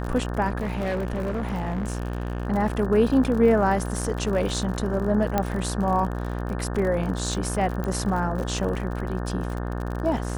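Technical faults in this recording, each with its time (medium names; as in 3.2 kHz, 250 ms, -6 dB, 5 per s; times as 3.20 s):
buzz 60 Hz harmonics 30 -29 dBFS
crackle 54 per s -30 dBFS
0.60–2.47 s: clipped -23 dBFS
5.38 s: pop -9 dBFS
7.84 s: pop -17 dBFS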